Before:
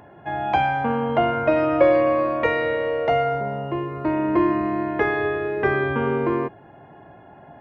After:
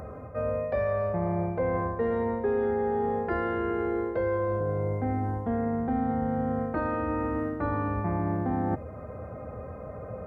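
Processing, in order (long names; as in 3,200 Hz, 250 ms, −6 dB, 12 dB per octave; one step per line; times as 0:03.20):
graphic EQ with 15 bands 100 Hz +6 dB, 400 Hz −7 dB, 4,000 Hz −6 dB
wrong playback speed 45 rpm record played at 33 rpm
reversed playback
downward compressor 6 to 1, threshold −33 dBFS, peak gain reduction 19 dB
reversed playback
dynamic equaliser 1,300 Hz, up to −5 dB, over −55 dBFS, Q 2.3
level +7.5 dB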